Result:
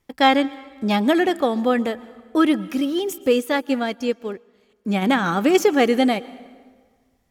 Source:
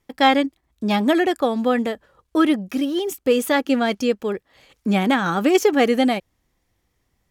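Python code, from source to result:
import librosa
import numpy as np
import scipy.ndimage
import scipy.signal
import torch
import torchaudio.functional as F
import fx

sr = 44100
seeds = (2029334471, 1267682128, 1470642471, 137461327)

y = fx.rev_plate(x, sr, seeds[0], rt60_s=1.6, hf_ratio=0.75, predelay_ms=105, drr_db=18.5)
y = fx.upward_expand(y, sr, threshold_db=-38.0, expansion=1.5, at=(3.39, 5.01), fade=0.02)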